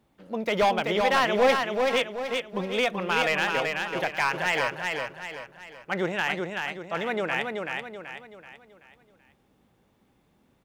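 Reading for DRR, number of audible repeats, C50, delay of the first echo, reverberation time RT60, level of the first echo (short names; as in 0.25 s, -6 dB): none, 5, none, 0.381 s, none, -4.0 dB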